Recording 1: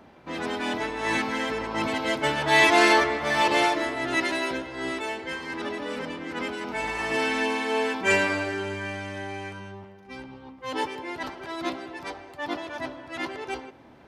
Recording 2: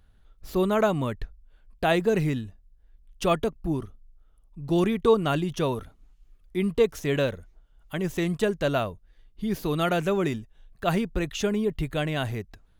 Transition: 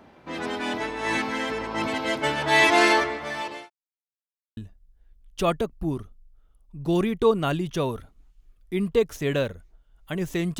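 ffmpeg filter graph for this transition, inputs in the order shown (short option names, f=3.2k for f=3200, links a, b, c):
-filter_complex "[0:a]apad=whole_dur=10.59,atrim=end=10.59,asplit=2[a][b];[a]atrim=end=3.7,asetpts=PTS-STARTPTS,afade=t=out:st=2.85:d=0.85[c];[b]atrim=start=3.7:end=4.57,asetpts=PTS-STARTPTS,volume=0[d];[1:a]atrim=start=2.4:end=8.42,asetpts=PTS-STARTPTS,afade=t=in:d=0.004:c=hsin[e];[c][d][e]concat=n=3:v=0:a=1"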